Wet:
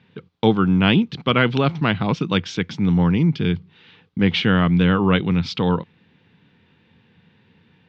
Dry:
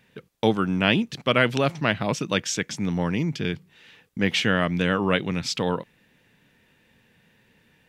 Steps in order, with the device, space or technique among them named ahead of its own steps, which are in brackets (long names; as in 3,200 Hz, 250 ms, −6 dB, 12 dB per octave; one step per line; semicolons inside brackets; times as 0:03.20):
guitar cabinet (loudspeaker in its box 85–4,000 Hz, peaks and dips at 89 Hz +9 dB, 170 Hz +5 dB, 600 Hz −9 dB, 1,800 Hz −7 dB, 2,600 Hz −4 dB)
level +5 dB